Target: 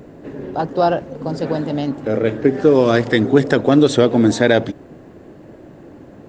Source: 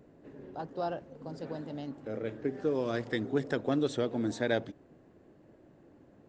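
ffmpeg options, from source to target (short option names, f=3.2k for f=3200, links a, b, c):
-af "alimiter=level_in=19.5dB:limit=-1dB:release=50:level=0:latency=1,volume=-1dB"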